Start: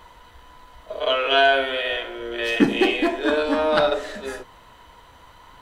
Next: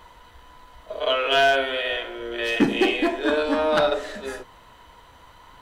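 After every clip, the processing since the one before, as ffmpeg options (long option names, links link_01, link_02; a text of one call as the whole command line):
ffmpeg -i in.wav -af "asoftclip=type=hard:threshold=-10dB,volume=-1dB" out.wav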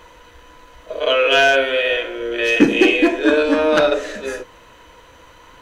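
ffmpeg -i in.wav -af "equalizer=frequency=315:width_type=o:width=0.33:gain=7,equalizer=frequency=500:width_type=o:width=0.33:gain=9,equalizer=frequency=800:width_type=o:width=0.33:gain=-4,equalizer=frequency=1600:width_type=o:width=0.33:gain=4,equalizer=frequency=2500:width_type=o:width=0.33:gain=7,equalizer=frequency=6300:width_type=o:width=0.33:gain=8,volume=2.5dB" out.wav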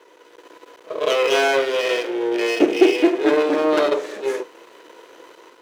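ffmpeg -i in.wav -af "dynaudnorm=framelen=130:gausssize=5:maxgain=6.5dB,aeval=exprs='max(val(0),0)':channel_layout=same,highpass=frequency=370:width_type=q:width=4.4,volume=-4.5dB" out.wav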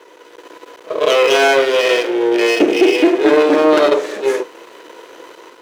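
ffmpeg -i in.wav -af "alimiter=level_in=8dB:limit=-1dB:release=50:level=0:latency=1,volume=-1dB" out.wav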